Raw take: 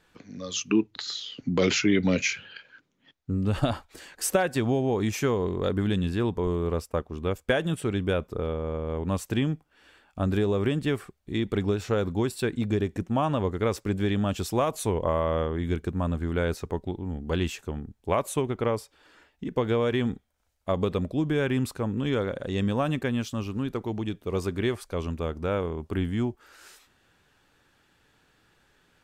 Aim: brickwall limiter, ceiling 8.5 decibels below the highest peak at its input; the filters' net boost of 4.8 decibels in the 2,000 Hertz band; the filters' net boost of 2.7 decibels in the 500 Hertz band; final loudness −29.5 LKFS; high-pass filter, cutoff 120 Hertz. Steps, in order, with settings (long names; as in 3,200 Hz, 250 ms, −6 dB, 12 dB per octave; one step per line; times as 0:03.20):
high-pass filter 120 Hz
parametric band 500 Hz +3 dB
parametric band 2,000 Hz +6 dB
level −1 dB
brickwall limiter −16.5 dBFS